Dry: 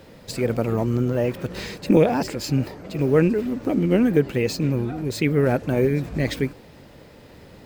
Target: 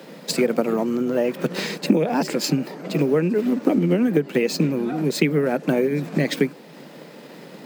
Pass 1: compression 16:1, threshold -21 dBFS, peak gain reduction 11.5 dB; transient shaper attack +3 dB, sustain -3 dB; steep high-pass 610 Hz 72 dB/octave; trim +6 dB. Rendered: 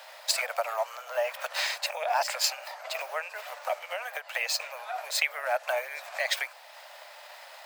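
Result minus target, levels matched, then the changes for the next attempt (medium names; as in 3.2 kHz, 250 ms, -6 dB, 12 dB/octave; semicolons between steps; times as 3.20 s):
500 Hz band -3.5 dB
change: steep high-pass 150 Hz 72 dB/octave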